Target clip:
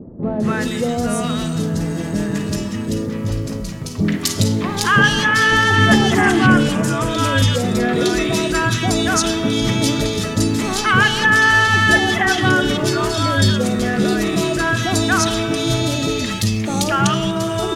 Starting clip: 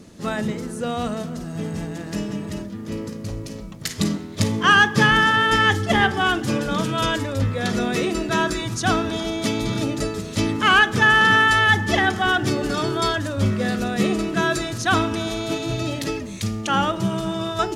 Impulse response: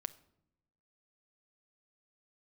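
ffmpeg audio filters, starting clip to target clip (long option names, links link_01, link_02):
-filter_complex "[0:a]asettb=1/sr,asplit=3[link_01][link_02][link_03];[link_01]atrim=end=5.784[link_04];[link_02]atrim=start=5.78:end=6.69,asetpts=PTS-STARTPTS,afade=type=in:duration=0.004:curve=qsin,afade=type=out:start_time=0.906:duration=0.004:curve=qsin,equalizer=frequency=125:width_type=o:width=1:gain=7,equalizer=frequency=250:width_type=o:width=1:gain=10,equalizer=frequency=500:width_type=o:width=1:gain=3,equalizer=frequency=1000:width_type=o:width=1:gain=4,equalizer=frequency=2000:width_type=o:width=1:gain=4,equalizer=frequency=4000:width_type=o:width=1:gain=-7,equalizer=frequency=8000:width_type=o:width=1:gain=7[link_05];[link_03]atrim=start=6.686[link_06];[link_04][link_05]acrossfade=duration=0.004:curve1=hsin:curve2=qsin[link_07];[link_07][link_06]acrossfade=duration=0.004:curve1=qsin:curve2=hsin,acompressor=threshold=-28dB:ratio=1.5,asoftclip=type=tanh:threshold=-16dB,acrossover=split=800|2600[link_08][link_09][link_10];[link_09]adelay=230[link_11];[link_10]adelay=400[link_12];[link_08][link_11][link_12]amix=inputs=3:normalize=0,asplit=2[link_13][link_14];[1:a]atrim=start_sample=2205,asetrate=34839,aresample=44100[link_15];[link_14][link_15]afir=irnorm=-1:irlink=0,volume=5dB[link_16];[link_13][link_16]amix=inputs=2:normalize=0,adynamicequalizer=threshold=0.0282:dfrequency=1700:dqfactor=0.7:tfrequency=1700:tqfactor=0.7:attack=5:release=100:ratio=0.375:range=1.5:mode=boostabove:tftype=highshelf,volume=1.5dB"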